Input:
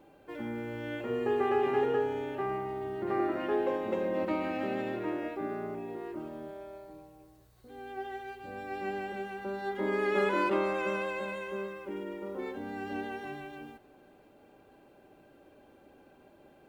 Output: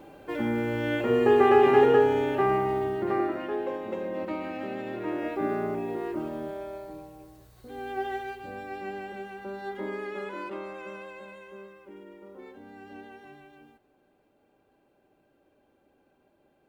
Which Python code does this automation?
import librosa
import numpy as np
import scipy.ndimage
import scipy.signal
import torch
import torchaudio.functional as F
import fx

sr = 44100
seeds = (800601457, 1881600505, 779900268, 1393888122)

y = fx.gain(x, sr, db=fx.line((2.76, 9.5), (3.51, -1.5), (4.82, -1.5), (5.45, 7.5), (8.15, 7.5), (8.85, -1.0), (9.75, -1.0), (10.19, -8.5)))